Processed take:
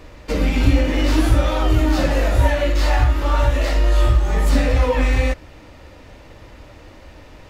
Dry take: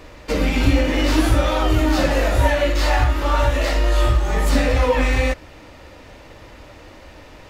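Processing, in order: low shelf 240 Hz +5 dB; gain -2.5 dB

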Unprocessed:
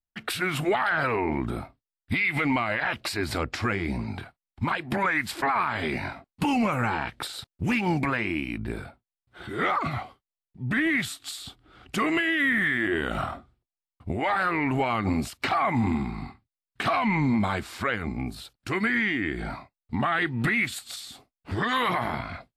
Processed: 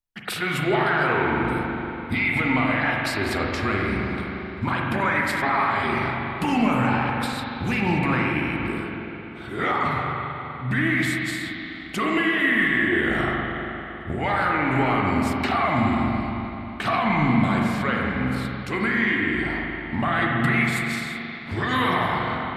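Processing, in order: spring tank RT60 3.4 s, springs 39/47 ms, chirp 45 ms, DRR -2 dB

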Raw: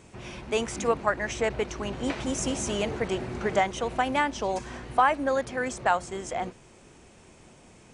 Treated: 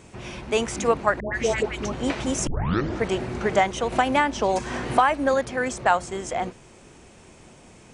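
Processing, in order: 1.2–1.92 dispersion highs, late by 0.143 s, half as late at 960 Hz; 2.47 tape start 0.56 s; 3.92–5.34 three-band squash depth 70%; gain +4 dB

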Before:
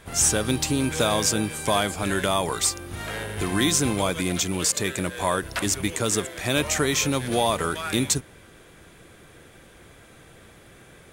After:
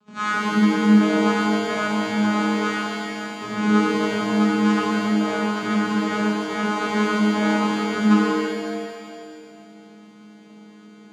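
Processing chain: sample sorter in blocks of 32 samples; dynamic EQ 1000 Hz, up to +7 dB, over -38 dBFS, Q 0.88; reverse; upward compressor, threshold -37 dBFS; reverse; sample leveller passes 1; vocoder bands 8, saw 210 Hz; flange 0.19 Hz, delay 5 ms, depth 4.1 ms, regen -56%; on a send: flutter echo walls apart 8.9 m, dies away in 0.4 s; on the sum: shimmer reverb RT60 2.2 s, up +7 st, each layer -8 dB, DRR -6.5 dB; gain -7 dB

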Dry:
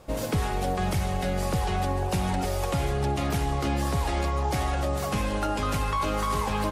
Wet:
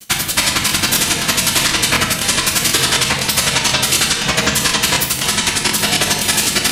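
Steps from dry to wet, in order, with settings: spectral limiter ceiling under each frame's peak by 21 dB; HPF 620 Hz 6 dB/oct; spectral gate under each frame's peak -10 dB weak; in parallel at -9 dB: sine folder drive 10 dB, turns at -13.5 dBFS; on the sum: grains 53 ms, grains 11/s, spray 13 ms, pitch spread up and down by 0 st; bit-crush 12-bit; on a send at -2 dB: reverb RT60 0.90 s, pre-delay 3 ms; on the sum: maximiser +21 dB; crackling interface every 0.25 s, samples 1024, repeat, from 0.67; gain -2.5 dB

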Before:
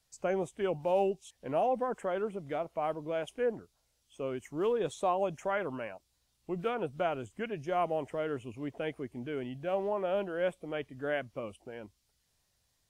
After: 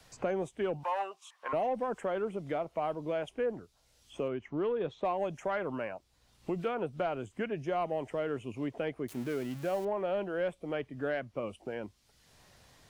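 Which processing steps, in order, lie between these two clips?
9.08–9.85 switching spikes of -32 dBFS; high shelf 7300 Hz -8.5 dB; soft clip -20.5 dBFS, distortion -24 dB; 0.83–1.53 resonant high-pass 1100 Hz, resonance Q 7.4; 4.28–5.05 air absorption 270 m; three-band squash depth 70%

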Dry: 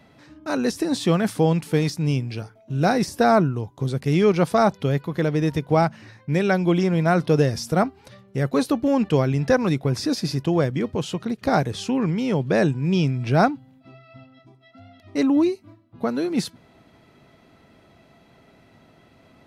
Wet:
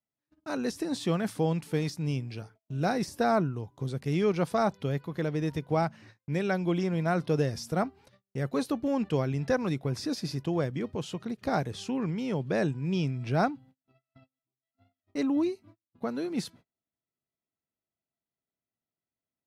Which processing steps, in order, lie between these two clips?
gate -43 dBFS, range -35 dB; gain -8.5 dB

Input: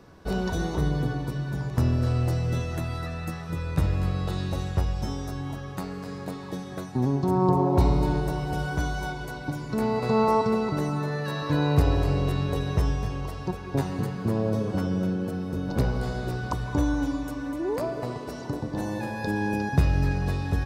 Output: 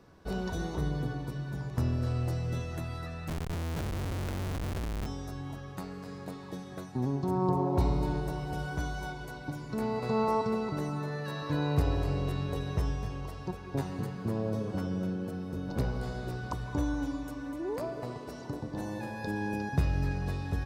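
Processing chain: 3.28–5.06 Schmitt trigger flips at -31 dBFS; gain -6.5 dB

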